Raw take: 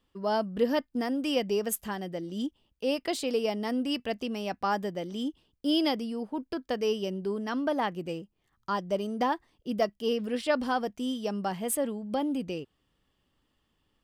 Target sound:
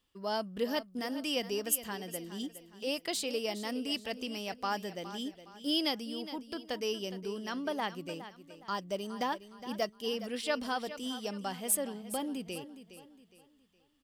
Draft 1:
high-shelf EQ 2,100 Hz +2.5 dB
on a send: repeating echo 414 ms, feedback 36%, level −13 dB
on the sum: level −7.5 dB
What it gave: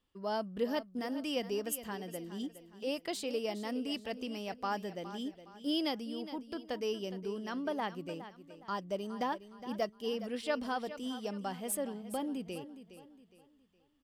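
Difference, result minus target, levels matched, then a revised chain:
4,000 Hz band −3.5 dB
high-shelf EQ 2,100 Hz +10.5 dB
on a send: repeating echo 414 ms, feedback 36%, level −13 dB
on the sum: level −7.5 dB

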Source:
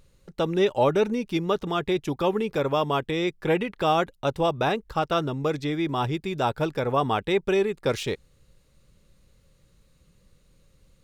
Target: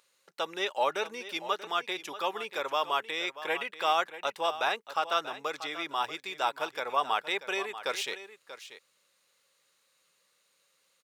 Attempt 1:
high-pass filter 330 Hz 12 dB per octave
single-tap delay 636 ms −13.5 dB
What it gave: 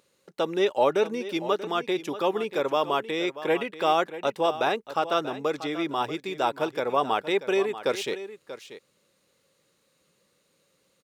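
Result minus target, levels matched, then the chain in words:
250 Hz band +10.0 dB
high-pass filter 910 Hz 12 dB per octave
single-tap delay 636 ms −13.5 dB

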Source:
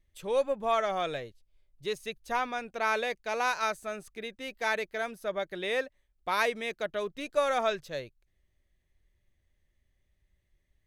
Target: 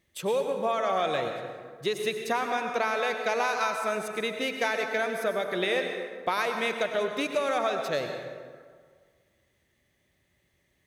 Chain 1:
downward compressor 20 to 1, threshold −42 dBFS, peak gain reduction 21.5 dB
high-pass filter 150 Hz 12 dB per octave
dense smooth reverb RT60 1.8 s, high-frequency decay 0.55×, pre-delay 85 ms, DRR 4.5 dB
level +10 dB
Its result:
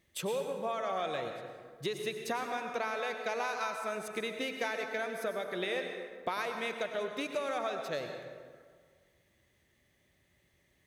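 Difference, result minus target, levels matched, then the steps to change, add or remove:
downward compressor: peak gain reduction +7.5 dB
change: downward compressor 20 to 1, threshold −34 dBFS, peak gain reduction 14 dB

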